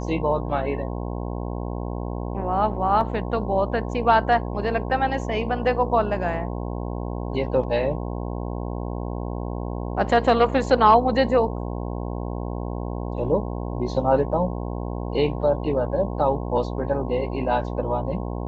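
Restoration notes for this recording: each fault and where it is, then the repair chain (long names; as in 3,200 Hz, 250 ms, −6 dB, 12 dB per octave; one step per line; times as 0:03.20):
mains buzz 60 Hz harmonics 18 −29 dBFS
0:03.01: drop-out 2.2 ms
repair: hum removal 60 Hz, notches 18
repair the gap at 0:03.01, 2.2 ms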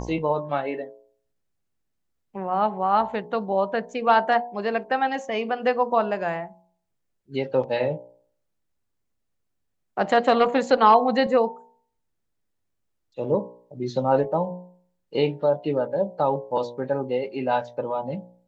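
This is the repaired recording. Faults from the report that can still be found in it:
none of them is left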